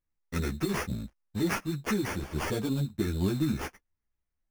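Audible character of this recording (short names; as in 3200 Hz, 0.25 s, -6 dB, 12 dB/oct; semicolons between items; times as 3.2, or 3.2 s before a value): aliases and images of a low sample rate 3900 Hz, jitter 0%; a shimmering, thickened sound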